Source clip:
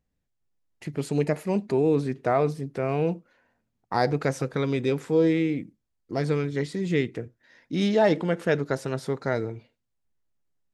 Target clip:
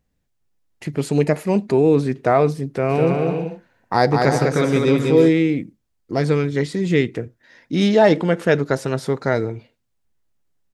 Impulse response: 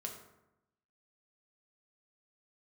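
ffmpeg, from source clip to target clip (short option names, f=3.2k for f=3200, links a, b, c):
-filter_complex "[0:a]asplit=3[a][b][c];[a]afade=t=out:st=2.89:d=0.02[d];[b]aecho=1:1:200|320|392|435.2|461.1:0.631|0.398|0.251|0.158|0.1,afade=t=in:st=2.89:d=0.02,afade=t=out:st=5.28:d=0.02[e];[c]afade=t=in:st=5.28:d=0.02[f];[d][e][f]amix=inputs=3:normalize=0,volume=7dB"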